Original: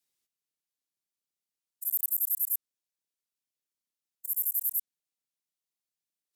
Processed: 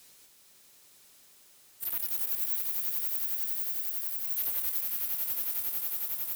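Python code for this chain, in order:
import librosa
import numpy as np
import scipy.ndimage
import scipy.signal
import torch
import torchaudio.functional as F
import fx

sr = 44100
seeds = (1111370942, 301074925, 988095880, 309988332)

y = fx.pitch_ramps(x, sr, semitones=10.0, every_ms=870)
y = fx.echo_swell(y, sr, ms=91, loudest=8, wet_db=-10.0)
y = fx.power_curve(y, sr, exponent=0.5)
y = F.gain(torch.from_numpy(y), -7.0).numpy()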